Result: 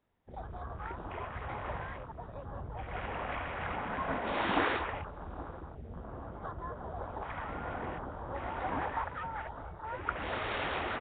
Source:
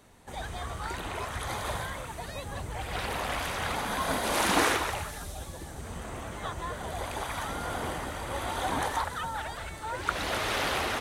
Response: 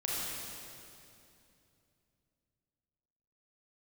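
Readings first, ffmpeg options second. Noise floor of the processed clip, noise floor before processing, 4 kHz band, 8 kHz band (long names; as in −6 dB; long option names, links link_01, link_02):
−48 dBFS, −42 dBFS, −11.5 dB, below −40 dB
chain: -af "aecho=1:1:823|1646:0.178|0.032,afwtdn=0.0141,volume=-4.5dB" -ar 8000 -c:a nellymoser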